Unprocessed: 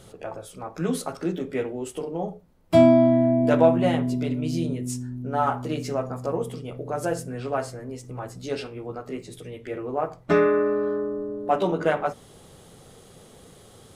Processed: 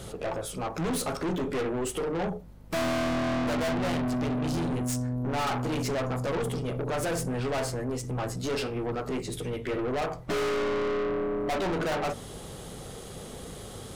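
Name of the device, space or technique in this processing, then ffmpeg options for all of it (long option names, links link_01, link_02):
valve amplifier with mains hum: -af "aeval=exprs='(tanh(56.2*val(0)+0.2)-tanh(0.2))/56.2':channel_layout=same,aeval=exprs='val(0)+0.00141*(sin(2*PI*50*n/s)+sin(2*PI*2*50*n/s)/2+sin(2*PI*3*50*n/s)/3+sin(2*PI*4*50*n/s)/4+sin(2*PI*5*50*n/s)/5)':channel_layout=same,volume=8dB"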